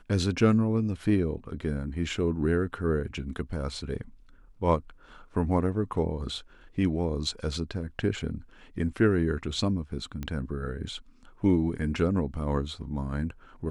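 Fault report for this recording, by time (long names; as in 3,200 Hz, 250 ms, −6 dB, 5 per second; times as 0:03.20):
0:10.23: click −21 dBFS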